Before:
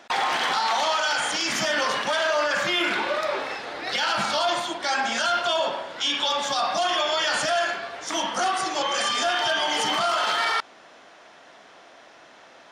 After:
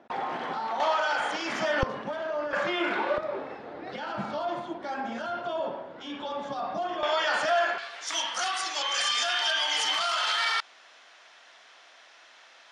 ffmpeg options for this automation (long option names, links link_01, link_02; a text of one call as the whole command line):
ffmpeg -i in.wav -af "asetnsamples=nb_out_samples=441:pad=0,asendcmd='0.8 bandpass f 620;1.83 bandpass f 160;2.53 bandpass f 540;3.18 bandpass f 190;7.03 bandpass f 910;7.78 bandpass f 3800',bandpass=frequency=210:width_type=q:width=0.52:csg=0" out.wav